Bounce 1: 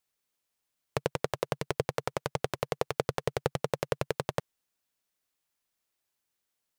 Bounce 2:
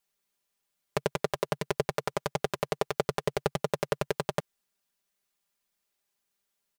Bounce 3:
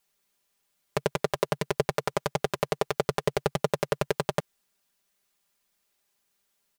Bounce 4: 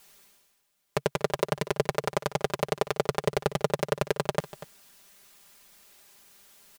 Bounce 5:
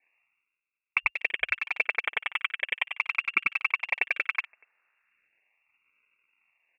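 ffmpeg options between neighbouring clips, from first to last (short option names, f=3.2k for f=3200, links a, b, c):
-af "aecho=1:1:5:0.7"
-af "alimiter=limit=-14.5dB:level=0:latency=1:release=38,volume=6dB"
-af "areverse,acompressor=mode=upward:threshold=-40dB:ratio=2.5,areverse,aecho=1:1:241:0.158"
-af "acrusher=samples=29:mix=1:aa=0.000001:lfo=1:lforange=29:lforate=0.37,lowpass=f=2.4k:t=q:w=0.5098,lowpass=f=2.4k:t=q:w=0.6013,lowpass=f=2.4k:t=q:w=0.9,lowpass=f=2.4k:t=q:w=2.563,afreqshift=-2800,afwtdn=0.0178"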